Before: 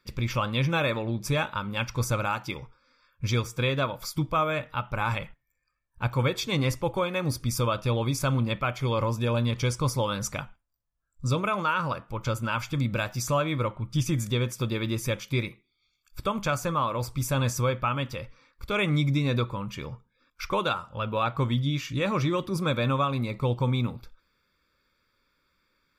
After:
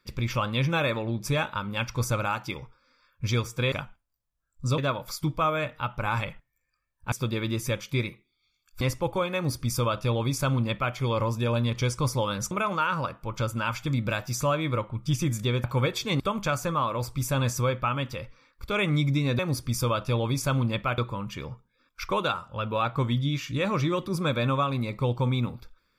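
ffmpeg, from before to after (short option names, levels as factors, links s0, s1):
-filter_complex "[0:a]asplit=10[s0][s1][s2][s3][s4][s5][s6][s7][s8][s9];[s0]atrim=end=3.722[s10];[s1]atrim=start=10.318:end=11.382[s11];[s2]atrim=start=3.718:end=6.062[s12];[s3]atrim=start=14.508:end=16.202[s13];[s4]atrim=start=6.618:end=10.322[s14];[s5]atrim=start=11.378:end=14.512[s15];[s6]atrim=start=6.058:end=6.622[s16];[s7]atrim=start=16.198:end=19.392[s17];[s8]atrim=start=7.158:end=8.752[s18];[s9]atrim=start=19.388[s19];[s10][s11]acrossfade=d=0.004:c1=hsin:c2=hsin[s20];[s20][s12]acrossfade=d=0.004:c1=hsin:c2=hsin[s21];[s21][s13]acrossfade=d=0.004:c1=hsin:c2=hsin[s22];[s22][s14]acrossfade=d=0.004:c1=hsin:c2=hsin[s23];[s23][s15]acrossfade=d=0.004:c1=hsin:c2=hsin[s24];[s24][s16]acrossfade=d=0.004:c1=hsin:c2=hsin[s25];[s25][s17]acrossfade=d=0.004:c1=hsin:c2=hsin[s26];[s26][s18]acrossfade=d=0.004:c1=hsin:c2=hsin[s27];[s27][s19]acrossfade=d=0.004:c1=hsin:c2=hsin"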